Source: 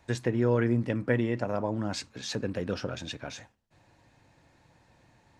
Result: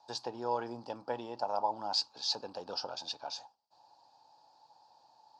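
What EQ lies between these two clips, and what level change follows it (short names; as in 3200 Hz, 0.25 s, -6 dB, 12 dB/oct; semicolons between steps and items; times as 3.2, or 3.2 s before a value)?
double band-pass 2000 Hz, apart 2.5 oct; bell 1900 Hz +4.5 dB 2.3 oct; dynamic EQ 2600 Hz, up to +4 dB, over -59 dBFS, Q 1.1; +8.0 dB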